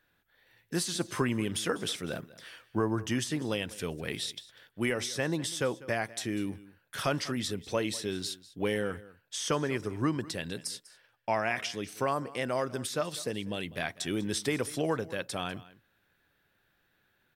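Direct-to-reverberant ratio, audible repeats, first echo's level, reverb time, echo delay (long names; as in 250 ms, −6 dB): no reverb audible, 1, −19.0 dB, no reverb audible, 197 ms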